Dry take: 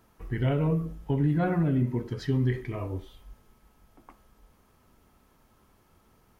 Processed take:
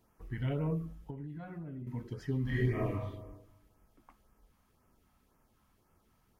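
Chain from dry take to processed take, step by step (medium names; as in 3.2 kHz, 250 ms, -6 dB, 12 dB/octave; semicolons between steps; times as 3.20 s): 0.94–1.87 s: compression 8:1, threshold -33 dBFS, peak gain reduction 12 dB; 2.42–2.91 s: reverb throw, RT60 1.1 s, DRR -8.5 dB; LFO notch sine 1.9 Hz 360–4100 Hz; trim -7.5 dB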